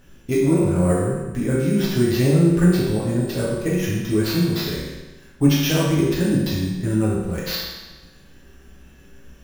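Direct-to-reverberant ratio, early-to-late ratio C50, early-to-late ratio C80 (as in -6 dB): -8.0 dB, 0.0 dB, 2.5 dB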